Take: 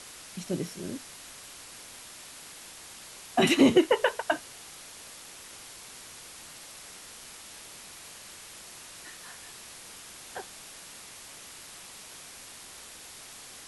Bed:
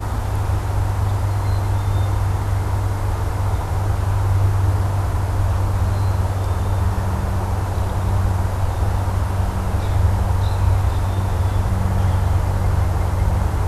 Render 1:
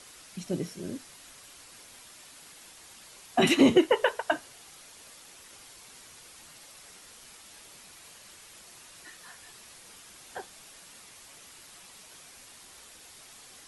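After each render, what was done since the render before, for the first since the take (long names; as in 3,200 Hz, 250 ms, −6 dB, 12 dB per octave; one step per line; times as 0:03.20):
broadband denoise 6 dB, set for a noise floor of −47 dBFS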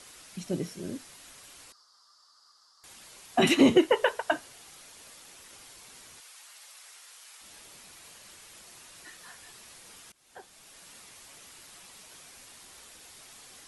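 0:01.72–0:02.84: pair of resonant band-passes 2,400 Hz, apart 2 octaves
0:06.20–0:07.41: high-pass filter 860 Hz
0:10.12–0:10.89: fade in linear, from −22.5 dB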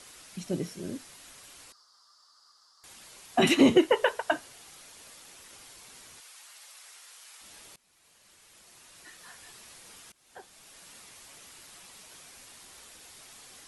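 0:07.76–0:09.46: fade in, from −22 dB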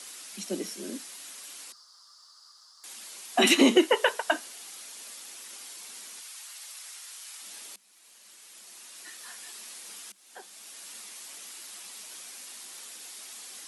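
Chebyshev high-pass filter 190 Hz, order 8
high-shelf EQ 2,400 Hz +9.5 dB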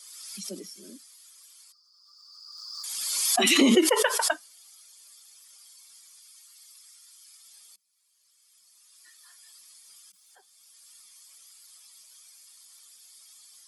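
spectral dynamics exaggerated over time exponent 1.5
background raised ahead of every attack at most 27 dB per second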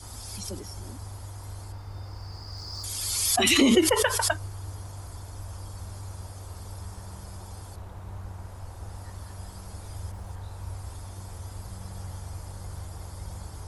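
mix in bed −20.5 dB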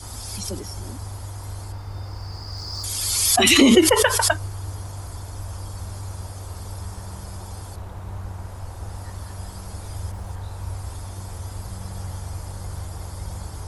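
level +6 dB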